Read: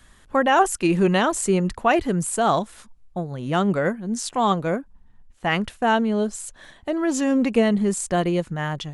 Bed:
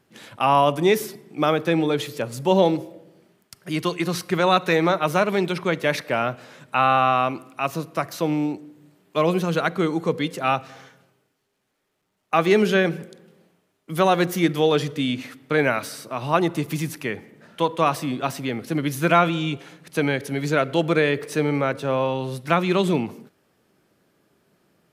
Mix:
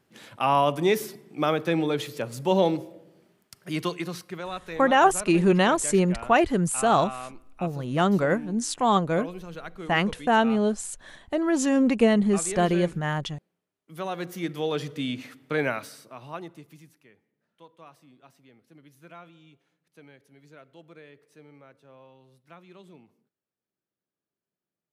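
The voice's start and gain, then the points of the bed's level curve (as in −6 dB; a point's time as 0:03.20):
4.45 s, −1.0 dB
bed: 0:03.85 −4 dB
0:04.49 −17 dB
0:13.71 −17 dB
0:15.05 −6 dB
0:15.68 −6 dB
0:17.08 −29.5 dB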